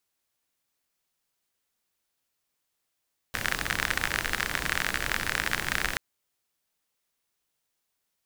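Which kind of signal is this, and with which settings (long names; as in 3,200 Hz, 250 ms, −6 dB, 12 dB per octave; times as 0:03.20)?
rain-like ticks over hiss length 2.63 s, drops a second 44, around 1,700 Hz, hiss −5 dB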